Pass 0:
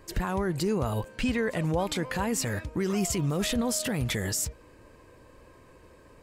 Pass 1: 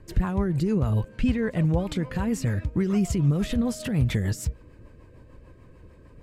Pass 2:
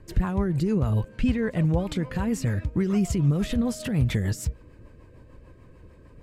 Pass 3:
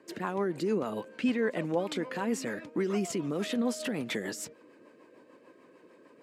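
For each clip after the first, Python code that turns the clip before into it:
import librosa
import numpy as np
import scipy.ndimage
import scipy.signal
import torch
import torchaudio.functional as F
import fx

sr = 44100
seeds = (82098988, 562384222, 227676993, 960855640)

y1 = fx.bass_treble(x, sr, bass_db=10, treble_db=-6)
y1 = fx.rotary(y1, sr, hz=6.7)
y2 = y1
y3 = scipy.signal.sosfilt(scipy.signal.butter(4, 260.0, 'highpass', fs=sr, output='sos'), y2)
y3 = fx.high_shelf(y3, sr, hz=11000.0, db=-7.5)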